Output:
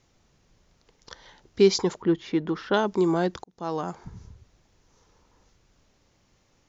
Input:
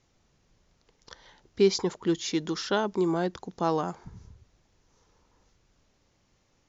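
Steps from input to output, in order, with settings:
0:02.02–0:02.74: low-pass filter 1,900 Hz 12 dB per octave
0:03.44–0:04.06: fade in
level +3.5 dB

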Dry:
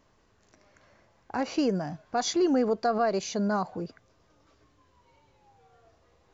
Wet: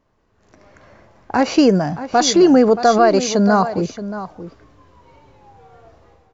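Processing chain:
automatic gain control gain up to 15 dB
single-tap delay 626 ms −12.5 dB
one half of a high-frequency compander decoder only

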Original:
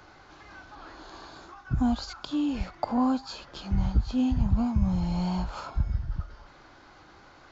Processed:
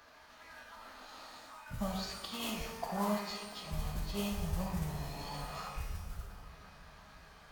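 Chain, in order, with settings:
tilt shelving filter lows −4.5 dB, about 670 Hz
mains-hum notches 60/120/180/240/300/360 Hz
tuned comb filter 790 Hz, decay 0.38 s, mix 60%
flanger 0.35 Hz, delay 3.1 ms, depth 1.2 ms, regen −88%
in parallel at −11 dB: hard clipping −33.5 dBFS, distortion −21 dB
on the sum: noise that follows the level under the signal 17 dB
phase-vocoder pitch shift with formants kept −4 semitones
bucket-brigade delay 346 ms, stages 4,096, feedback 77%, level −18 dB
reverb with rising layers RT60 1 s, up +12 semitones, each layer −8 dB, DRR 2 dB
level +1.5 dB

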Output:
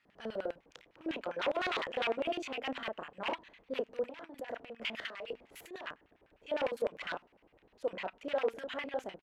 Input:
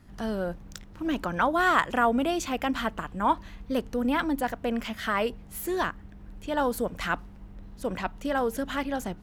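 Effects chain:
double-tracking delay 31 ms −4 dB
wave folding −19.5 dBFS
mains-hum notches 50/100/150/200/250 Hz
0:04.08–0:05.87: compressor whose output falls as the input rises −34 dBFS, ratio −1
auto-filter band-pass square 9.9 Hz 530–2,500 Hz
level −1 dB

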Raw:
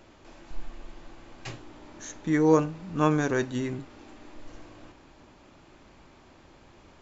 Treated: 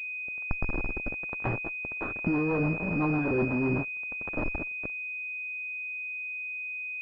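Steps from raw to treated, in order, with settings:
fuzz pedal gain 49 dB, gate −39 dBFS
downward compressor, threshold −25 dBFS, peak gain reduction 10.5 dB
rotating-speaker cabinet horn 1.2 Hz, later 8 Hz, at 0:01.64
switching amplifier with a slow clock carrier 2,500 Hz

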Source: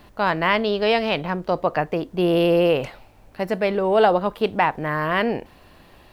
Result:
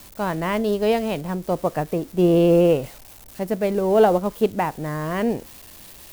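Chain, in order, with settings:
spike at every zero crossing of −19.5 dBFS
tilt shelving filter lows +7 dB, about 730 Hz
expander for the loud parts 1.5 to 1, over −25 dBFS

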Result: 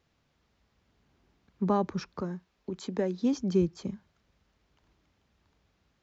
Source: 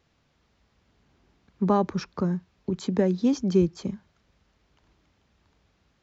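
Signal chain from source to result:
0:02.21–0:03.23: parametric band 110 Hz −11.5 dB 1.5 octaves
level −4.5 dB

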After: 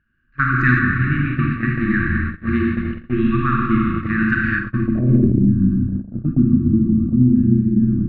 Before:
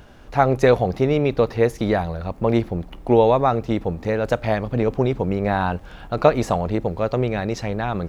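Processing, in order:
linear-phase brick-wall band-stop 350–1,100 Hz
four-comb reverb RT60 3.1 s, combs from 32 ms, DRR −4 dB
0:04.95–0:05.47: transient designer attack −11 dB, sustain +10 dB
EQ curve with evenly spaced ripples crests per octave 1.4, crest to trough 8 dB
low-pass filter sweep 1,700 Hz → 260 Hz, 0:04.53–0:05.46
0:00.79–0:02.47: high-frequency loss of the air 190 metres
noise gate −19 dBFS, range −26 dB

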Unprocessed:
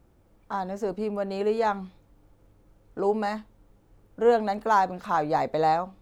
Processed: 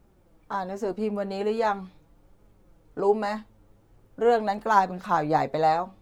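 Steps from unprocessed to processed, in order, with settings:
flanger 0.41 Hz, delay 4.7 ms, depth 4.8 ms, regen +49%
level +5 dB

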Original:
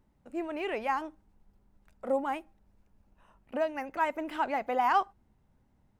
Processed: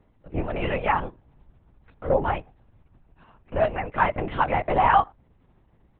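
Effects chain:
linear-prediction vocoder at 8 kHz whisper
level +7.5 dB

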